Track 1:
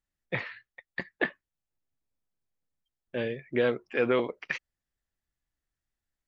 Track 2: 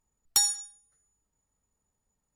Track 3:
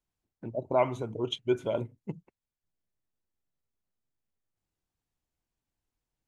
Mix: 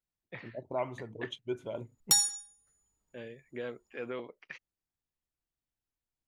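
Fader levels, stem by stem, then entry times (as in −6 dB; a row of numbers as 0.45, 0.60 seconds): −13.5, −1.0, −8.5 decibels; 0.00, 1.75, 0.00 seconds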